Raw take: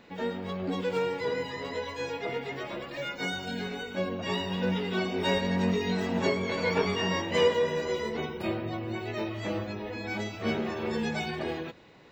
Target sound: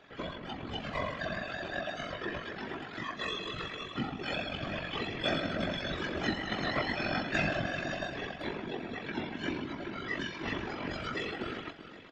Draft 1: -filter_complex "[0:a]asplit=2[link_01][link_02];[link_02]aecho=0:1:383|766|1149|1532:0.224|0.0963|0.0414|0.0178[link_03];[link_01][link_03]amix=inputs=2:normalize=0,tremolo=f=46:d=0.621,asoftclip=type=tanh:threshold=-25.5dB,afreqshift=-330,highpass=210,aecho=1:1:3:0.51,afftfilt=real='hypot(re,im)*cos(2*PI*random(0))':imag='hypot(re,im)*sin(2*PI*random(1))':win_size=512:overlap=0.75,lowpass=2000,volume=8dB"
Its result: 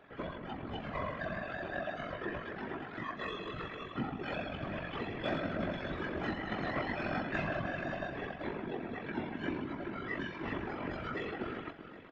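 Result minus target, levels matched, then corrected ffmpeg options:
soft clipping: distortion +17 dB; 4,000 Hz band −7.0 dB
-filter_complex "[0:a]asplit=2[link_01][link_02];[link_02]aecho=0:1:383|766|1149|1532:0.224|0.0963|0.0414|0.0178[link_03];[link_01][link_03]amix=inputs=2:normalize=0,tremolo=f=46:d=0.621,asoftclip=type=tanh:threshold=-13.5dB,afreqshift=-330,highpass=210,aecho=1:1:3:0.51,afftfilt=real='hypot(re,im)*cos(2*PI*random(0))':imag='hypot(re,im)*sin(2*PI*random(1))':win_size=512:overlap=0.75,lowpass=5000,volume=8dB"

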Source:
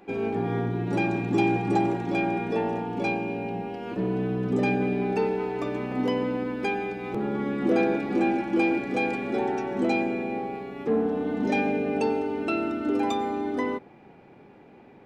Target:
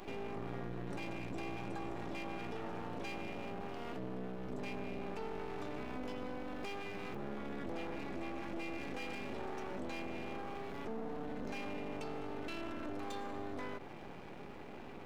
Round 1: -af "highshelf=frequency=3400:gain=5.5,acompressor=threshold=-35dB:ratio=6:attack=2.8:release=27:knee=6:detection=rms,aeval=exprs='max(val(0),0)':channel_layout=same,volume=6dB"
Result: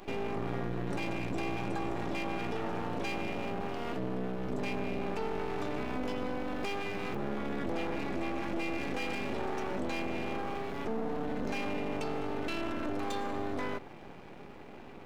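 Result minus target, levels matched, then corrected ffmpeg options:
downward compressor: peak gain reduction −7.5 dB
-af "highshelf=frequency=3400:gain=5.5,acompressor=threshold=-44dB:ratio=6:attack=2.8:release=27:knee=6:detection=rms,aeval=exprs='max(val(0),0)':channel_layout=same,volume=6dB"

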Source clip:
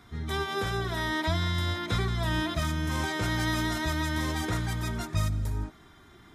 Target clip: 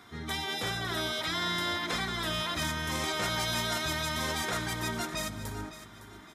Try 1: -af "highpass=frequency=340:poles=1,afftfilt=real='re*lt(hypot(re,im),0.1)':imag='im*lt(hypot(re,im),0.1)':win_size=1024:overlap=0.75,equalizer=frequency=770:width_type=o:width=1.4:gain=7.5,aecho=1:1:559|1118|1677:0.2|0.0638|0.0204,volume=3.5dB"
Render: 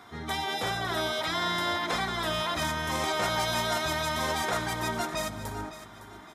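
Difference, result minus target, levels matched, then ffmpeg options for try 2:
1,000 Hz band +3.5 dB
-af "highpass=frequency=340:poles=1,afftfilt=real='re*lt(hypot(re,im),0.1)':imag='im*lt(hypot(re,im),0.1)':win_size=1024:overlap=0.75,aecho=1:1:559|1118|1677:0.2|0.0638|0.0204,volume=3.5dB"

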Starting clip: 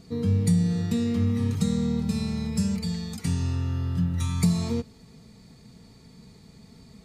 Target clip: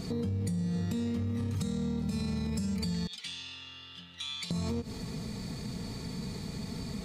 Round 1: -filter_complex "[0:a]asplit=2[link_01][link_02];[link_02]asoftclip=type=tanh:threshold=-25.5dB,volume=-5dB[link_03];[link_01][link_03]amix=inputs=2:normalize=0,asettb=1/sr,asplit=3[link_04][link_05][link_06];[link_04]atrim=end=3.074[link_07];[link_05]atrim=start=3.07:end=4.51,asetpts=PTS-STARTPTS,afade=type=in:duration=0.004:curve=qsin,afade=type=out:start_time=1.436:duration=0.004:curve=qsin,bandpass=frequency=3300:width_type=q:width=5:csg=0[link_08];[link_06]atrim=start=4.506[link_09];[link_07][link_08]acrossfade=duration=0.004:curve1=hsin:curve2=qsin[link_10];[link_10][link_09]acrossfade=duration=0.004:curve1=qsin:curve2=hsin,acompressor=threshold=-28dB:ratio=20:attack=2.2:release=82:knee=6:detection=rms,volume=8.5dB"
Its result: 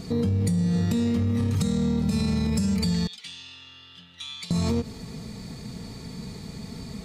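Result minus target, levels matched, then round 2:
downward compressor: peak gain reduction −8.5 dB
-filter_complex "[0:a]asplit=2[link_01][link_02];[link_02]asoftclip=type=tanh:threshold=-25.5dB,volume=-5dB[link_03];[link_01][link_03]amix=inputs=2:normalize=0,asettb=1/sr,asplit=3[link_04][link_05][link_06];[link_04]atrim=end=3.074[link_07];[link_05]atrim=start=3.07:end=4.51,asetpts=PTS-STARTPTS,afade=type=in:duration=0.004:curve=qsin,afade=type=out:start_time=1.436:duration=0.004:curve=qsin,bandpass=frequency=3300:width_type=q:width=5:csg=0[link_08];[link_06]atrim=start=4.506[link_09];[link_07][link_08]acrossfade=duration=0.004:curve1=hsin:curve2=qsin[link_10];[link_10][link_09]acrossfade=duration=0.004:curve1=qsin:curve2=hsin,acompressor=threshold=-37dB:ratio=20:attack=2.2:release=82:knee=6:detection=rms,volume=8.5dB"

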